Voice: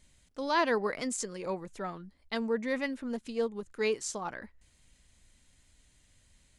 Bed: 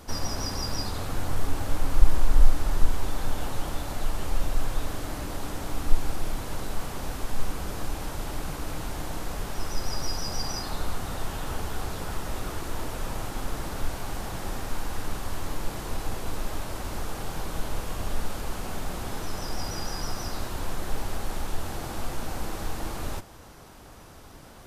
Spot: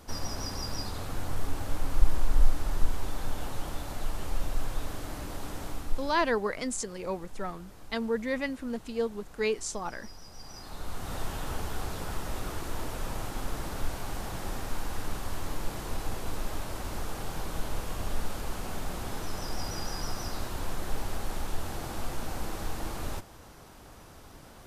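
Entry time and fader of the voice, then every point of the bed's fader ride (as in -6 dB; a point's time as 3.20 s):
5.60 s, +1.0 dB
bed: 5.66 s -4.5 dB
6.39 s -17.5 dB
10.33 s -17.5 dB
11.15 s -2.5 dB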